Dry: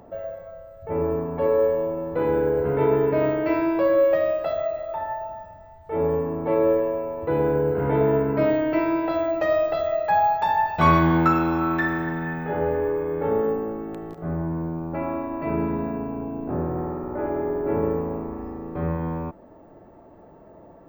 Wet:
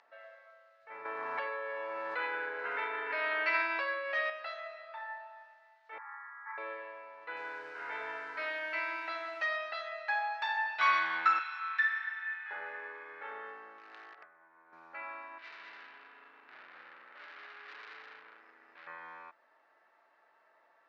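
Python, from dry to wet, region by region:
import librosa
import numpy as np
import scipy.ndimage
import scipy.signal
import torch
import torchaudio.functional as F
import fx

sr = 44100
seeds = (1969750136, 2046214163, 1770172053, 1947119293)

y = fx.chain(x, sr, fx.peak_eq(hz=100.0, db=-15.0, octaves=0.51),
    fx.env_flatten(amount_pct=100), at=(1.05, 4.3))
y = fx.chain(y, sr, fx.cheby1_bandpass(low_hz=870.0, high_hz=2000.0, order=4),
    fx.room_flutter(wall_m=5.8, rt60_s=1.0), at=(5.98, 6.58))
y = fx.chain(y, sr, fx.lowpass(hz=8500.0, slope=12),
    fx.echo_crushed(ms=167, feedback_pct=55, bits=8, wet_db=-11.5), at=(7.2, 9.42))
y = fx.chain(y, sr, fx.bessel_highpass(hz=1500.0, order=4),
    fx.high_shelf(hz=9000.0, db=-6.0), at=(11.39, 12.51))
y = fx.chain(y, sr, fx.over_compress(threshold_db=-34.0, ratio=-1.0),
    fx.bandpass_edges(low_hz=240.0, high_hz=2400.0),
    fx.clip_hard(threshold_db=-28.0), at=(13.78, 14.73))
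y = fx.chain(y, sr, fx.peak_eq(hz=910.0, db=-6.5, octaves=1.5),
    fx.tube_stage(drive_db=34.0, bias=0.75),
    fx.echo_single(ms=207, db=-4.0), at=(15.38, 18.87))
y = scipy.signal.sosfilt(scipy.signal.cheby1(2, 1.0, [1600.0, 4700.0], 'bandpass', fs=sr, output='sos'), y)
y = fx.notch(y, sr, hz=3300.0, q=21.0)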